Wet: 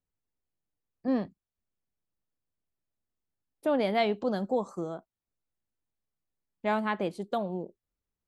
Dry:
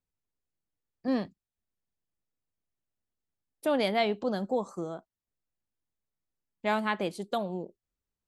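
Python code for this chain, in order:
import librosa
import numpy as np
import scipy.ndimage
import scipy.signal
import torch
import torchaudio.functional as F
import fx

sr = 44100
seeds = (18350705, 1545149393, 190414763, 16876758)

y = fx.high_shelf(x, sr, hz=2400.0, db=fx.steps((0.0, -11.5), (3.88, -3.5), (4.96, -9.0)))
y = F.gain(torch.from_numpy(y), 1.0).numpy()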